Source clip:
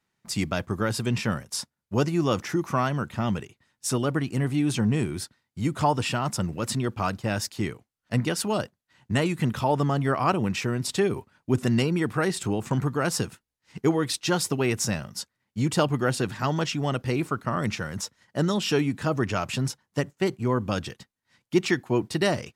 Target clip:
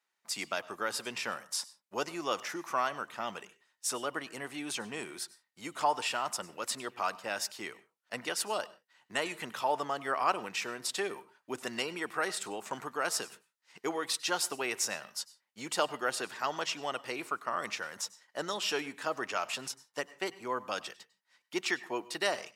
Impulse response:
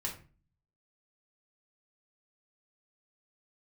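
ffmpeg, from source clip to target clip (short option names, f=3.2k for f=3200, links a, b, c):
-filter_complex "[0:a]highpass=610,asplit=2[a][b];[1:a]atrim=start_sample=2205,atrim=end_sample=3969,adelay=96[c];[b][c]afir=irnorm=-1:irlink=0,volume=-19.5dB[d];[a][d]amix=inputs=2:normalize=0,volume=-3.5dB"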